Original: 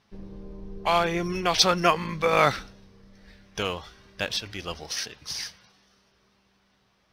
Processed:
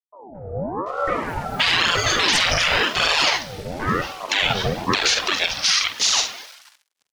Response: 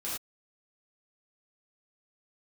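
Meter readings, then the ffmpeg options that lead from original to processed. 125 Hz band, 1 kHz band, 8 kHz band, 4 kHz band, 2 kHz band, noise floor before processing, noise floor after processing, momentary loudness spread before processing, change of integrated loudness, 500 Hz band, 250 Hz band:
+4.5 dB, +3.0 dB, +10.5 dB, +11.0 dB, +11.0 dB, -67 dBFS, -75 dBFS, 20 LU, +6.0 dB, +1.0 dB, +3.0 dB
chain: -filter_complex "[0:a]agate=range=-33dB:threshold=-57dB:ratio=3:detection=peak,afftfilt=real='re*lt(hypot(re,im),0.112)':imag='im*lt(hypot(re,im),0.112)':win_size=1024:overlap=0.75,highshelf=f=3.8k:g=4.5,dynaudnorm=f=150:g=7:m=14dB,aphaser=in_gain=1:out_gain=1:delay=3.2:decay=0.53:speed=1.7:type=triangular,highpass=170,lowpass=4.9k,acrusher=bits=7:mix=0:aa=0.5,asuperstop=centerf=720:order=8:qfactor=2.9,asplit=2[a][b];[b]adelay=47,volume=-11.5dB[c];[a][c]amix=inputs=2:normalize=0,acrossover=split=260|940[d][e][f];[e]adelay=220[g];[f]adelay=740[h];[d][g][h]amix=inputs=3:normalize=0,alimiter=level_in=14.5dB:limit=-1dB:release=50:level=0:latency=1,aeval=exprs='val(0)*sin(2*PI*620*n/s+620*0.55/0.97*sin(2*PI*0.97*n/s))':c=same,volume=-4.5dB"

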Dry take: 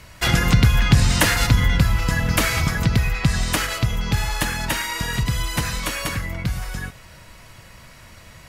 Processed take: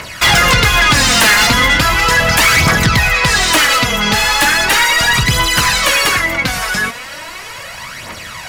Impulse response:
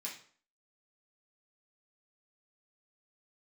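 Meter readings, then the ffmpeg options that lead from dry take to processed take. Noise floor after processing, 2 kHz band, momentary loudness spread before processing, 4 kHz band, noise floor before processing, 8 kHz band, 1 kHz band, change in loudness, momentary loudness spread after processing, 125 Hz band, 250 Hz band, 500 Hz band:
-30 dBFS, +14.5 dB, 10 LU, +14.0 dB, -45 dBFS, +12.0 dB, +14.0 dB, +10.0 dB, 18 LU, 0.0 dB, +4.0 dB, +11.0 dB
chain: -filter_complex "[0:a]aphaser=in_gain=1:out_gain=1:delay=4.9:decay=0.56:speed=0.37:type=triangular,asplit=2[a][b];[b]highpass=f=720:p=1,volume=26dB,asoftclip=type=tanh:threshold=-0.5dB[c];[a][c]amix=inputs=2:normalize=0,lowpass=f=6.1k:p=1,volume=-6dB,volume=-1dB"

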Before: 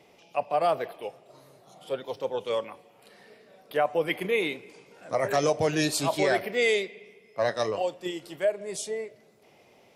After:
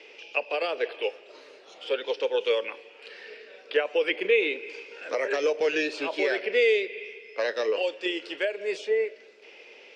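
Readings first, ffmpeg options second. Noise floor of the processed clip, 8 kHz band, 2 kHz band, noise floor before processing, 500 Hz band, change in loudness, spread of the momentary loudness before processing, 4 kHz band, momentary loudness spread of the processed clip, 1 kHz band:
-51 dBFS, under -10 dB, +3.5 dB, -59 dBFS, +1.5 dB, +1.0 dB, 12 LU, +2.0 dB, 17 LU, -7.5 dB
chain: -filter_complex "[0:a]crystalizer=i=4.5:c=0,acrossover=split=790|2500[a][b][c];[a]acompressor=threshold=-30dB:ratio=4[d];[b]acompressor=threshold=-40dB:ratio=4[e];[c]acompressor=threshold=-39dB:ratio=4[f];[d][e][f]amix=inputs=3:normalize=0,highpass=f=320:w=0.5412,highpass=f=320:w=1.3066,equalizer=f=460:t=q:w=4:g=7,equalizer=f=710:t=q:w=4:g=-9,equalizer=f=1.1k:t=q:w=4:g=-5,equalizer=f=1.6k:t=q:w=4:g=5,equalizer=f=2.6k:t=q:w=4:g=8,equalizer=f=3.9k:t=q:w=4:g=-5,lowpass=f=4.4k:w=0.5412,lowpass=f=4.4k:w=1.3066,volume=4dB"

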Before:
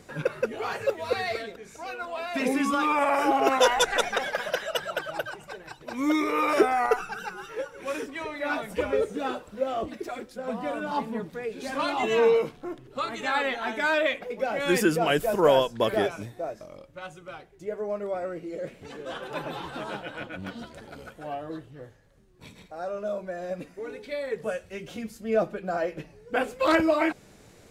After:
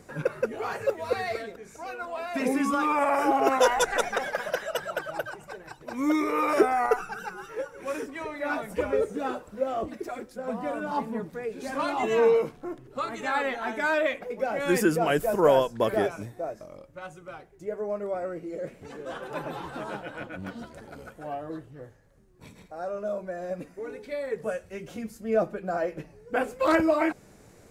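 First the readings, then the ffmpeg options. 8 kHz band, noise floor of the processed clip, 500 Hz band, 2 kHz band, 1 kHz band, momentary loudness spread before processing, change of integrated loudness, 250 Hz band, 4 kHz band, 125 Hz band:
-1.5 dB, -54 dBFS, 0.0 dB, -2.0 dB, -0.5 dB, 17 LU, -0.5 dB, 0.0 dB, -6.0 dB, 0.0 dB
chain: -af "equalizer=f=3.4k:t=o:w=1.1:g=-7"

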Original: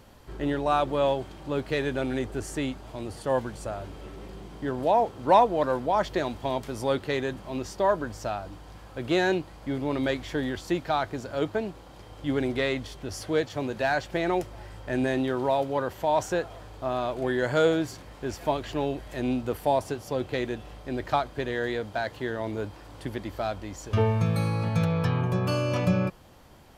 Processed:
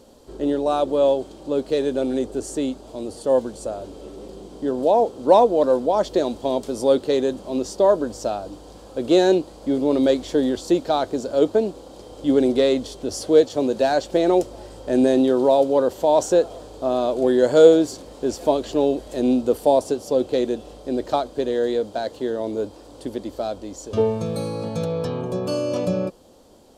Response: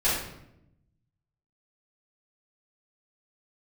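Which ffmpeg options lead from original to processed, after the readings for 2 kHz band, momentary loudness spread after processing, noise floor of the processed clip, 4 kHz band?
-4.5 dB, 13 LU, -44 dBFS, +4.5 dB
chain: -af "dynaudnorm=f=610:g=21:m=3.5dB,equalizer=f=125:t=o:w=1:g=-6,equalizer=f=250:t=o:w=1:g=8,equalizer=f=500:t=o:w=1:g=11,equalizer=f=2k:t=o:w=1:g=-8,equalizer=f=4k:t=o:w=1:g=6,equalizer=f=8k:t=o:w=1:g=9,volume=-3dB"

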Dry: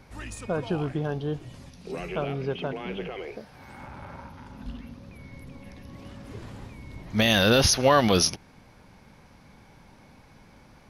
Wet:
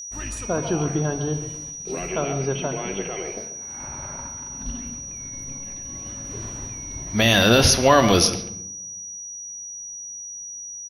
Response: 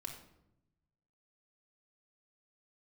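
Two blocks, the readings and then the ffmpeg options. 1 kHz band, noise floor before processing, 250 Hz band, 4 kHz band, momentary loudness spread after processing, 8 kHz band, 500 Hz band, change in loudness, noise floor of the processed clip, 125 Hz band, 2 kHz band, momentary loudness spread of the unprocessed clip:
+4.5 dB, -54 dBFS, +4.0 dB, +4.5 dB, 17 LU, +9.5 dB, +4.0 dB, +1.0 dB, -36 dBFS, +4.5 dB, +4.5 dB, 24 LU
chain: -filter_complex "[0:a]agate=range=-33dB:threshold=-40dB:ratio=3:detection=peak,asplit=2[a][b];[b]adelay=140,highpass=300,lowpass=3.4k,asoftclip=type=hard:threshold=-17.5dB,volume=-11dB[c];[a][c]amix=inputs=2:normalize=0,asplit=2[d][e];[1:a]atrim=start_sample=2205[f];[e][f]afir=irnorm=-1:irlink=0,volume=0.5dB[g];[d][g]amix=inputs=2:normalize=0,aeval=exprs='val(0)+0.0224*sin(2*PI*5800*n/s)':c=same"

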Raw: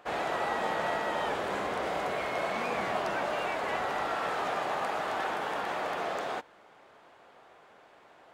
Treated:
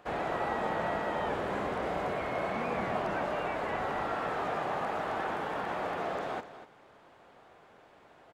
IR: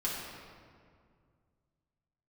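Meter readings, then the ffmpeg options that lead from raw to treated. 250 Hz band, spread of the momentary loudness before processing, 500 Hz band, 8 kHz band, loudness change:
+2.5 dB, 2 LU, -0.5 dB, n/a, -1.5 dB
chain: -filter_complex "[0:a]lowshelf=f=260:g=9.5,asplit=2[a][b];[b]adelay=244.9,volume=-13dB,highshelf=f=4k:g=-5.51[c];[a][c]amix=inputs=2:normalize=0,acrossover=split=2600[d][e];[e]acompressor=threshold=-50dB:ratio=4:attack=1:release=60[f];[d][f]amix=inputs=2:normalize=0,volume=-2.5dB"

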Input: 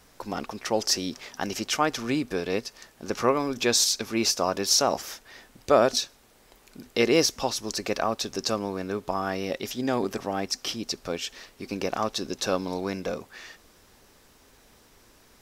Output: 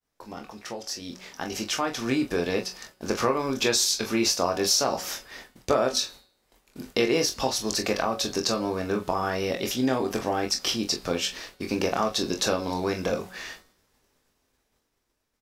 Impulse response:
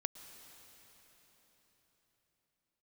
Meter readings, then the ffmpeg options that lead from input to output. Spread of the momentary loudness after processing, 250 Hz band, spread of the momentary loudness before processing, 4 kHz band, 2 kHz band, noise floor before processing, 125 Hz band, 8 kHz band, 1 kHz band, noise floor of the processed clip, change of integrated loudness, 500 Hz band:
15 LU, +1.0 dB, 14 LU, +0.5 dB, +1.0 dB, -58 dBFS, +1.5 dB, 0.0 dB, -0.5 dB, -75 dBFS, +0.5 dB, 0.0 dB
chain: -filter_complex "[0:a]acompressor=threshold=-27dB:ratio=3,asplit=2[a][b];[b]aecho=0:1:23|43:0.501|0.299[c];[a][c]amix=inputs=2:normalize=0,agate=range=-33dB:threshold=-44dB:ratio=3:detection=peak,bandreject=f=185.2:t=h:w=4,bandreject=f=370.4:t=h:w=4,bandreject=f=555.6:t=h:w=4,bandreject=f=740.8:t=h:w=4,bandreject=f=926:t=h:w=4,bandreject=f=1.1112k:t=h:w=4,bandreject=f=1.2964k:t=h:w=4,bandreject=f=1.4816k:t=h:w=4,bandreject=f=1.6668k:t=h:w=4,bandreject=f=1.852k:t=h:w=4,bandreject=f=2.0372k:t=h:w=4,bandreject=f=2.2224k:t=h:w=4,bandreject=f=2.4076k:t=h:w=4,bandreject=f=2.5928k:t=h:w=4,bandreject=f=2.778k:t=h:w=4,bandreject=f=2.9632k:t=h:w=4,bandreject=f=3.1484k:t=h:w=4,bandreject=f=3.3336k:t=h:w=4,bandreject=f=3.5188k:t=h:w=4,bandreject=f=3.704k:t=h:w=4,bandreject=f=3.8892k:t=h:w=4,bandreject=f=4.0744k:t=h:w=4,bandreject=f=4.2596k:t=h:w=4,bandreject=f=4.4448k:t=h:w=4,bandreject=f=4.63k:t=h:w=4,bandreject=f=4.8152k:t=h:w=4,bandreject=f=5.0004k:t=h:w=4,dynaudnorm=f=300:g=11:m=16.5dB,volume=-7.5dB"

